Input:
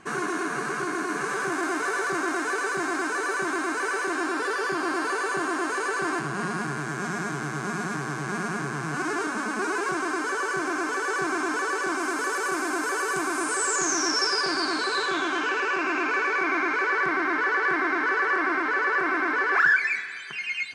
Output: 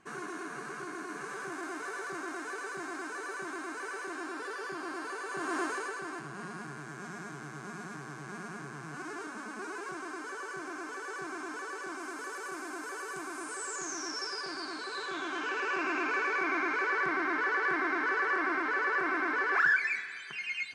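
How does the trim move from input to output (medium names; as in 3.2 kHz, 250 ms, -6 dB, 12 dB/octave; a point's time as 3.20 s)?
5.27 s -12 dB
5.59 s -4.5 dB
6.02 s -13 dB
14.85 s -13 dB
15.78 s -6 dB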